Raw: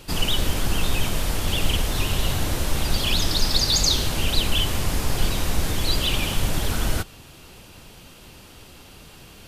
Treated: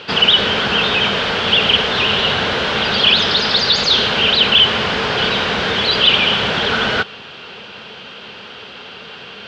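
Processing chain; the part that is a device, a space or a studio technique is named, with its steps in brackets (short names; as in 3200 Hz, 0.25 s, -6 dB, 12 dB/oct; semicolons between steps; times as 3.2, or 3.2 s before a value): overdrive pedal into a guitar cabinet (overdrive pedal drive 16 dB, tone 5700 Hz, clips at -5.5 dBFS; speaker cabinet 98–4300 Hz, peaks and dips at 210 Hz +7 dB, 310 Hz -7 dB, 440 Hz +8 dB, 1500 Hz +6 dB, 3100 Hz +5 dB); gain +3 dB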